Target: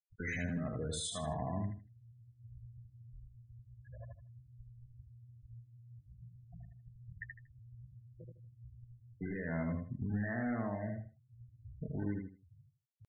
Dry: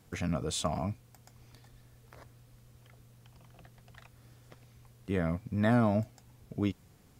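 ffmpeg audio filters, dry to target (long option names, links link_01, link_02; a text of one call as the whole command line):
ffmpeg -i in.wav -af "acrusher=bits=2:mode=log:mix=0:aa=0.000001,afftdn=noise_reduction=20:noise_floor=-44,superequalizer=11b=2.51:16b=2,acompressor=threshold=-39dB:ratio=6,alimiter=level_in=13dB:limit=-24dB:level=0:latency=1:release=12,volume=-13dB,atempo=0.55,afftfilt=real='re*gte(hypot(re,im),0.00447)':imag='im*gte(hypot(re,im),0.00447)':win_size=1024:overlap=0.75,aecho=1:1:78|156|234:0.668|0.16|0.0385,volume=6.5dB" out.wav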